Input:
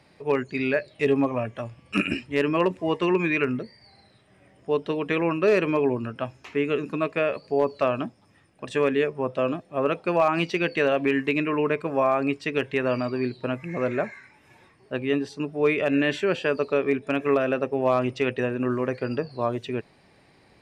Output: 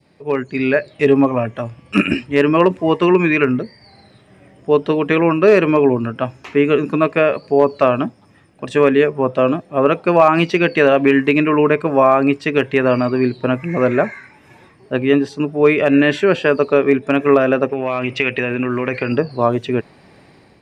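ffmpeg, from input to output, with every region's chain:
-filter_complex "[0:a]asettb=1/sr,asplit=3[a][b][c];[a]atrim=end=17.694[d];[b]atrim=start=17.69:end=19.12,asetpts=PTS-STARTPTS,afade=t=in:d=0.004:c=qsin,afade=t=out:st=1.426:d=0.004:c=qsin,acompressor=threshold=-26dB:ratio=6:attack=3.2:release=140:knee=1:detection=peak,equalizer=f=2.4k:t=o:w=0.84:g=13.5[e];[c]atrim=start=19.116[f];[d][e]acrossfade=d=0.004:c1=hsin:c2=qsin[g];[g][f]acrossfade=d=0.004:c1=qsin:c2=hsin,equalizer=f=210:w=0.4:g=5,dynaudnorm=f=210:g=5:m=10dB,adynamicequalizer=threshold=0.0447:dfrequency=1300:dqfactor=0.74:tfrequency=1300:tqfactor=0.74:attack=5:release=100:ratio=0.375:range=2:mode=boostabove:tftype=bell,volume=-1dB"

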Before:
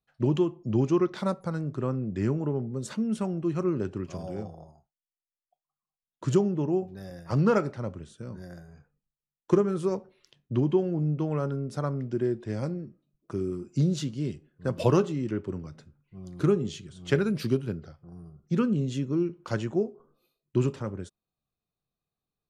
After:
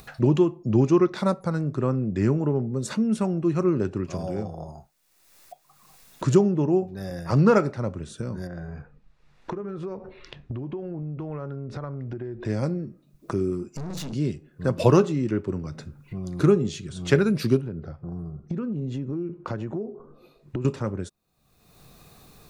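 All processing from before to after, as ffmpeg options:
-filter_complex "[0:a]asettb=1/sr,asplit=3[a][b][c];[a]atrim=end=8.474[d];[b]atrim=start=8.47:end=12.45,asetpts=PTS-STARTPTS,afade=t=in:d=0.004:c=qsin,afade=t=out:st=3.976:d=0.004:c=qsin,asubboost=boost=6:cutoff=78,acompressor=threshold=-43dB:ratio=4:attack=3.2:release=140:knee=1:detection=peak,lowpass=2.8k[e];[c]atrim=start=12.446[f];[d][e]acrossfade=d=0.004:c1=hsin:c2=qsin[g];[g][f]acrossfade=d=0.004:c1=qsin:c2=hsin,asettb=1/sr,asplit=3[h][i][j];[h]atrim=end=13.694[k];[i]atrim=start=13.69:end=14.13,asetpts=PTS-STARTPTS,afade=t=in:d=0.004:c=qsin,afade=t=out:st=0.436:d=0.004:c=qsin,bandreject=f=60:t=h:w=6,bandreject=f=120:t=h:w=6,bandreject=f=180:t=h:w=6,bandreject=f=240:t=h:w=6,bandreject=f=300:t=h:w=6,bandreject=f=360:t=h:w=6,bandreject=f=420:t=h:w=6,bandreject=f=480:t=h:w=6,bandreject=f=540:t=h:w=6,acompressor=threshold=-31dB:ratio=4:attack=3.2:release=140:knee=1:detection=peak,aeval=exprs='(tanh(126*val(0)+0.65)-tanh(0.65))/126':c=same[l];[j]atrim=start=14.126[m];[k][l]acrossfade=d=0.004:c1=hsin:c2=qsin[n];[n][m]acrossfade=d=0.004:c1=qsin:c2=hsin,asettb=1/sr,asplit=3[o][p][q];[o]atrim=end=17.614[r];[p]atrim=start=17.61:end=20.65,asetpts=PTS-STARTPTS,afade=t=in:d=0.004:c=qsin,afade=t=out:st=3.036:d=0.004:c=qsin,lowpass=f=1.1k:p=1,acompressor=threshold=-34dB:ratio=4:attack=3.2:release=140:knee=1:detection=peak[s];[q]atrim=start=20.646[t];[r][s]acrossfade=d=0.004:c1=hsin:c2=qsin[u];[u][t]acrossfade=d=0.004:c1=qsin:c2=hsin,bandreject=f=3.1k:w=11,acompressor=mode=upward:threshold=-30dB:ratio=2.5,volume=5dB"

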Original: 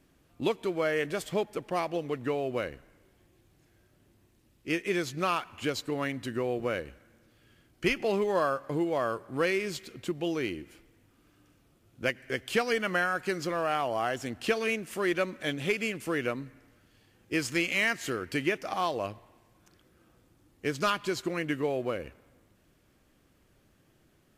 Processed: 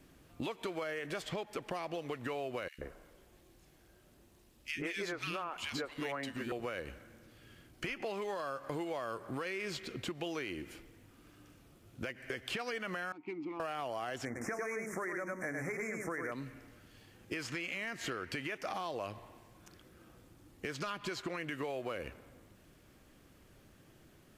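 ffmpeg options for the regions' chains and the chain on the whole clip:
-filter_complex "[0:a]asettb=1/sr,asplit=3[a][b][c];[a]atrim=end=2.684[d];[b]atrim=start=2.68:end=6.52,asetpts=PTS-STARTPTS,afade=t=in:d=0.004:c=qsin,afade=t=out:st=3.836:d=0.004:c=qsin,equalizer=f=110:t=o:w=0.84:g=-9,acrossover=split=280|1900[e][f][g];[e]adelay=100[h];[f]adelay=130[i];[h][i][g]amix=inputs=3:normalize=0,atrim=end_sample=169344[j];[c]atrim=start=6.516[k];[d][j]acrossfade=d=0.004:c1=hsin:c2=qsin[l];[l][k]acrossfade=d=0.004:c1=qsin:c2=hsin,asettb=1/sr,asplit=3[m][n][o];[m]atrim=end=13.124[p];[n]atrim=start=13.12:end=13.6,asetpts=PTS-STARTPTS,afade=t=in:d=0.004:c=qsin,afade=t=out:st=0.476:d=0.004:c=qsin,adynamicsmooth=sensitivity=7.5:basefreq=1.6k,asplit=3[q][r][s];[q]bandpass=f=300:t=q:w=8,volume=0dB[t];[r]bandpass=f=870:t=q:w=8,volume=-6dB[u];[s]bandpass=f=2.24k:t=q:w=8,volume=-9dB[v];[t][u][v]amix=inputs=3:normalize=0[w];[o]atrim=start=13.596[x];[p][w]acrossfade=d=0.004:c1=hsin:c2=qsin[y];[y][x]acrossfade=d=0.004:c1=qsin:c2=hsin,asettb=1/sr,asplit=3[z][aa][ab];[z]atrim=end=14.254[ac];[aa]atrim=start=14.25:end=16.32,asetpts=PTS-STARTPTS,afade=t=in:d=0.004:c=qsin,afade=t=out:st=2.066:d=0.004:c=qsin,asuperstop=centerf=3500:order=12:qfactor=1,bandreject=f=50:t=h:w=6,bandreject=f=100:t=h:w=6,bandreject=f=150:t=h:w=6,bandreject=f=200:t=h:w=6,bandreject=f=250:t=h:w=6,bandreject=f=300:t=h:w=6,bandreject=f=350:t=h:w=6,bandreject=f=400:t=h:w=6,bandreject=f=450:t=h:w=6,aecho=1:1:101:0.531,atrim=end_sample=91287[ad];[ab]atrim=start=16.316[ae];[ac][ad]acrossfade=d=0.004:c1=hsin:c2=qsin[af];[af][ae]acrossfade=d=0.004:c1=qsin:c2=hsin,acrossover=split=610|2600|6000[ag][ah][ai][aj];[ag]acompressor=threshold=-41dB:ratio=4[ak];[ah]acompressor=threshold=-35dB:ratio=4[al];[ai]acompressor=threshold=-47dB:ratio=4[am];[aj]acompressor=threshold=-60dB:ratio=4[an];[ak][al][am][an]amix=inputs=4:normalize=0,alimiter=level_in=4dB:limit=-24dB:level=0:latency=1:release=20,volume=-4dB,acompressor=threshold=-39dB:ratio=6,volume=4dB"

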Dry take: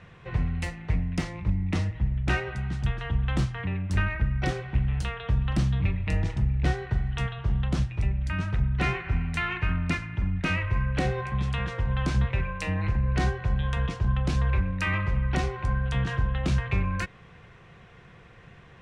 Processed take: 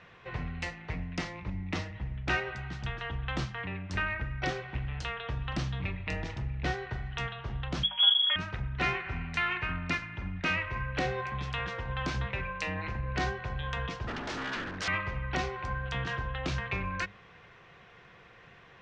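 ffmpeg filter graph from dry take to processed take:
-filter_complex "[0:a]asettb=1/sr,asplit=3[a][b][c];[a]atrim=end=7.834[d];[b]atrim=start=7.83:end=8.36,asetpts=PTS-STARTPTS,afade=t=in:d=0.004:c=qsin,afade=t=out:st=0.526:d=0.004:c=qsin,aecho=1:1:4.6:0.9,atrim=end_sample=23373,lowpass=f=2.9k:t=q:w=0.5098,lowpass=f=2.9k:t=q:w=0.6013,lowpass=f=2.9k:t=q:w=0.9,lowpass=f=2.9k:t=q:w=2.563,afreqshift=-3400[e];[c]atrim=start=8.356[f];[d][e]acrossfade=d=0.004:c1=hsin:c2=qsin[g];[g][f]acrossfade=d=0.004:c1=qsin:c2=hsin,asettb=1/sr,asplit=3[h][i][j];[h]atrim=end=14.074[k];[i]atrim=start=14.07:end=14.88,asetpts=PTS-STARTPTS,afade=t=in:d=0.004:c=qsin,afade=t=out:st=0.806:d=0.004:c=qsin,equalizer=f=1.6k:w=7:g=8.5,aeval=exprs='0.0422*(abs(mod(val(0)/0.0422+3,4)-2)-1)':c=same[l];[j]atrim=start=14.876[m];[k][l]acrossfade=d=0.004:c1=hsin:c2=qsin[n];[n][m]acrossfade=d=0.004:c1=qsin:c2=hsin,lowpass=f=6.3k:w=0.5412,lowpass=f=6.3k:w=1.3066,lowshelf=f=270:g=-11,bandreject=f=50:t=h:w=6,bandreject=f=100:t=h:w=6,bandreject=f=150:t=h:w=6,bandreject=f=200:t=h:w=6"

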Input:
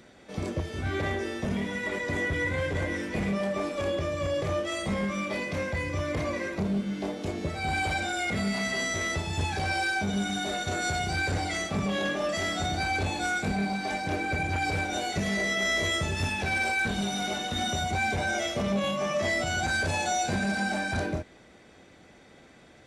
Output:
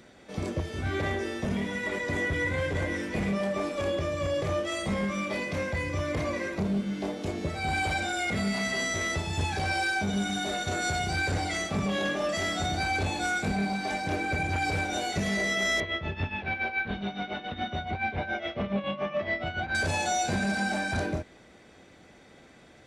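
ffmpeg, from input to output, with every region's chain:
-filter_complex "[0:a]asettb=1/sr,asplit=3[a][b][c];[a]atrim=end=15.804[d];[b]atrim=start=15.8:end=19.75,asetpts=PTS-STARTPTS,afade=t=in:d=0.004:c=qsin,afade=t=out:st=3.946:d=0.004:c=qsin,lowpass=f=3.3k:w=0.5412,lowpass=f=3.3k:w=1.3066,tremolo=f=7.1:d=0.72[e];[c]atrim=start=19.746[f];[d][e]acrossfade=d=0.004:c1=hsin:c2=qsin[g];[g][f]acrossfade=d=0.004:c1=qsin:c2=hsin"

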